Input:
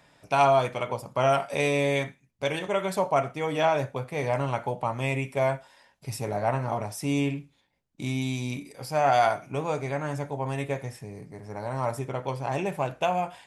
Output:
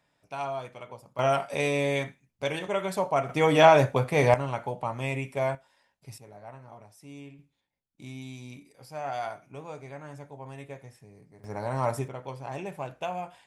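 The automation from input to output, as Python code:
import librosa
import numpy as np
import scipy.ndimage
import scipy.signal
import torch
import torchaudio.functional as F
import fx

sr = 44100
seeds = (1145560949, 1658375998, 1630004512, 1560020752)

y = fx.gain(x, sr, db=fx.steps((0.0, -13.0), (1.19, -2.0), (3.29, 7.0), (4.34, -3.0), (5.55, -10.0), (6.18, -19.0), (7.39, -12.0), (11.44, 1.0), (12.08, -7.5)))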